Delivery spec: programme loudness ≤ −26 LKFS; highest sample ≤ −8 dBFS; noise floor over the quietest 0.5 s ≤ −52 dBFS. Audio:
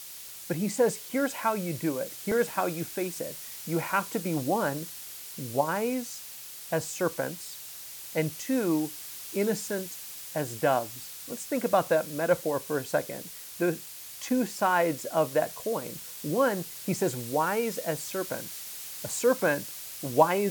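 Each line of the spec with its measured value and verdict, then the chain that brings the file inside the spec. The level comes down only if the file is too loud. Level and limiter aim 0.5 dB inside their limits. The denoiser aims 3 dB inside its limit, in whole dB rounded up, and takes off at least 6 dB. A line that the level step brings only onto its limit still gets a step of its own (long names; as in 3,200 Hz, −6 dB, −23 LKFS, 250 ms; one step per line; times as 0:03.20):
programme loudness −29.5 LKFS: in spec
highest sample −6.5 dBFS: out of spec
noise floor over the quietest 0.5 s −43 dBFS: out of spec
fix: broadband denoise 12 dB, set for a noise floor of −43 dBFS
brickwall limiter −8.5 dBFS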